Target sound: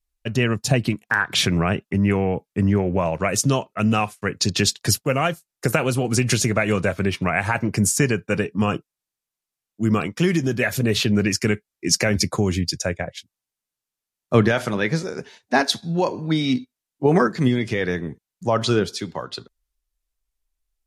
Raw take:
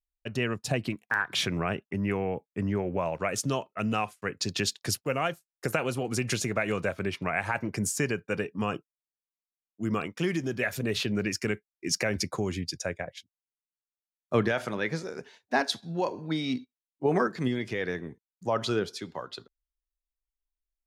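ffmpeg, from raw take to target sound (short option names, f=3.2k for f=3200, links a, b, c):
-af "bass=f=250:g=5,treble=f=4k:g=3,volume=7.5dB" -ar 32000 -c:a libmp3lame -b:a 56k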